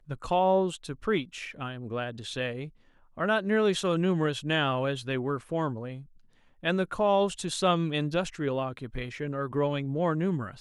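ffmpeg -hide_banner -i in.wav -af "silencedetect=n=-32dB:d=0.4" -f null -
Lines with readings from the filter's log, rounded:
silence_start: 2.65
silence_end: 3.19 | silence_duration: 0.54
silence_start: 5.95
silence_end: 6.64 | silence_duration: 0.69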